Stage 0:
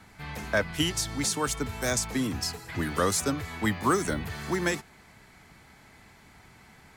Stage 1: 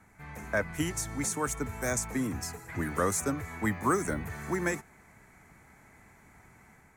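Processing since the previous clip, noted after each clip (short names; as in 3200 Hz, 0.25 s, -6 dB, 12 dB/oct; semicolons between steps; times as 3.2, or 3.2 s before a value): band shelf 3800 Hz -12 dB 1.1 oct; AGC gain up to 4 dB; gain -6.5 dB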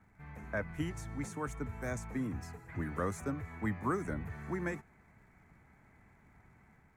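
tone controls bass +5 dB, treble -12 dB; crackle 170/s -62 dBFS; gain -7.5 dB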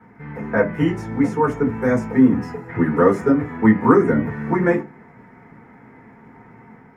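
reverb RT60 0.25 s, pre-delay 3 ms, DRR -4.5 dB; gain +1 dB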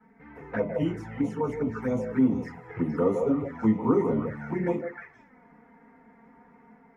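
delay with a stepping band-pass 0.156 s, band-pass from 670 Hz, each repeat 1.4 oct, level -0.5 dB; envelope flanger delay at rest 4.8 ms, full sweep at -14 dBFS; gain -8.5 dB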